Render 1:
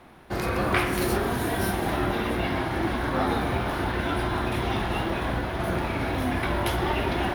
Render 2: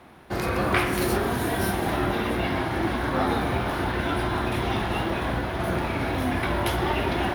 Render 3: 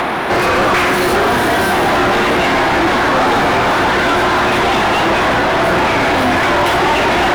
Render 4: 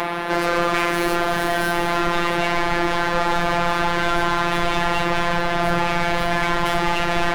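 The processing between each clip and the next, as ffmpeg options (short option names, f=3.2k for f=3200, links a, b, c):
-af "highpass=45,volume=1dB"
-filter_complex "[0:a]acompressor=mode=upward:threshold=-29dB:ratio=2.5,asplit=2[a][b];[b]highpass=f=720:p=1,volume=33dB,asoftclip=type=tanh:threshold=-8dB[c];[a][c]amix=inputs=2:normalize=0,lowpass=f=2.1k:p=1,volume=-6dB,volume=3dB"
-af "asubboost=boost=8:cutoff=92,afftfilt=real='hypot(re,im)*cos(PI*b)':imag='0':win_size=1024:overlap=0.75,volume=-4dB"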